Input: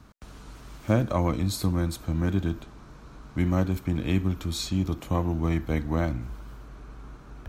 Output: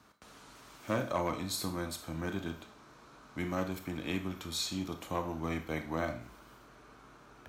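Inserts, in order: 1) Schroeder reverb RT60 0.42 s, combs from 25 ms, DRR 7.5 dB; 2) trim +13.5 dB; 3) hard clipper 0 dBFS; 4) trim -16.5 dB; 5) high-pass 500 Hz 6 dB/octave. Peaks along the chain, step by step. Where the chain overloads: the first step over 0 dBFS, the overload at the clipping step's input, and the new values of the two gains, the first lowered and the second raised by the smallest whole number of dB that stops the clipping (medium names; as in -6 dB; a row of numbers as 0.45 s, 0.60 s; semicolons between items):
-8.5 dBFS, +5.0 dBFS, 0.0 dBFS, -16.5 dBFS, -18.5 dBFS; step 2, 5.0 dB; step 2 +8.5 dB, step 4 -11.5 dB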